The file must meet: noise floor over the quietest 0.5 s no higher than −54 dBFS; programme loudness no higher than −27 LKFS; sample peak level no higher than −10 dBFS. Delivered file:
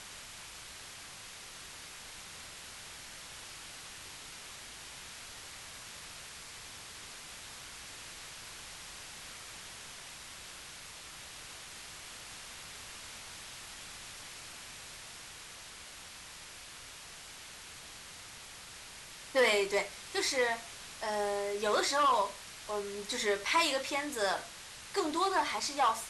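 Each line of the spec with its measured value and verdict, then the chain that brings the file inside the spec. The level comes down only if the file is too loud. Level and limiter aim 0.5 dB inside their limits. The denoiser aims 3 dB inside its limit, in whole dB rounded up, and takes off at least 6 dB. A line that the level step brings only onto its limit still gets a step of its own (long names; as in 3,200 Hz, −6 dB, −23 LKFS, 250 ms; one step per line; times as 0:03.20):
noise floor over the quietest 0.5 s −49 dBFS: out of spec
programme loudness −37.0 LKFS: in spec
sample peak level −17.0 dBFS: in spec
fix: broadband denoise 8 dB, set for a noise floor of −49 dBFS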